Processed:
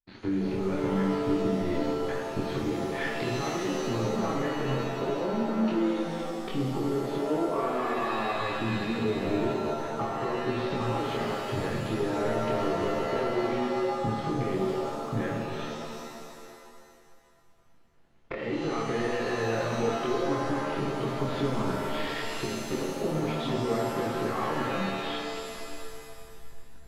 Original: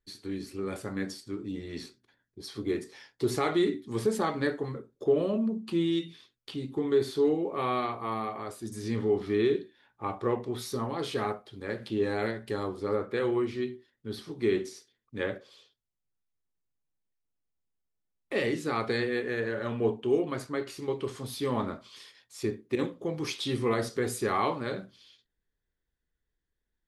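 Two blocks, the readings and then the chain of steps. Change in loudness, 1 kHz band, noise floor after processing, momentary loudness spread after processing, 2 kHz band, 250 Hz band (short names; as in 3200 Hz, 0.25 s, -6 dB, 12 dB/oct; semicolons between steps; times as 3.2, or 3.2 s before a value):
+1.5 dB, +4.5 dB, -54 dBFS, 6 LU, +3.0 dB, +2.5 dB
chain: switching dead time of 0.059 ms; recorder AGC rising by 68 dB/s; low-pass opened by the level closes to 3000 Hz, open at -22.5 dBFS; compressor, threshold -30 dBFS, peak gain reduction 14 dB; sample leveller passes 3; air absorption 330 m; chorus voices 2, 0.82 Hz, delay 24 ms, depth 3.2 ms; shimmer reverb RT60 2.2 s, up +7 st, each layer -2 dB, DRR 2 dB; gain -5.5 dB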